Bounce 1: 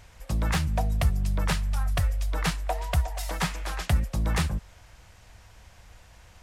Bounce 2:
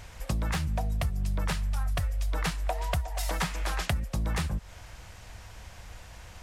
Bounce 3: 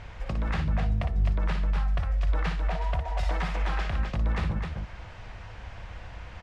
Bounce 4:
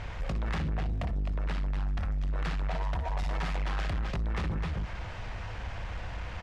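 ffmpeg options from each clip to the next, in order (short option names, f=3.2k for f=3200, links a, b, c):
-af "acompressor=threshold=-32dB:ratio=6,volume=5.5dB"
-filter_complex "[0:a]lowpass=2.9k,alimiter=level_in=0.5dB:limit=-24dB:level=0:latency=1:release=140,volume=-0.5dB,asplit=2[a][b];[b]aecho=0:1:58.31|259.5:0.447|0.562[c];[a][c]amix=inputs=2:normalize=0,volume=3dB"
-af "acompressor=threshold=-26dB:ratio=6,asoftclip=type=tanh:threshold=-32.5dB,volume=5dB"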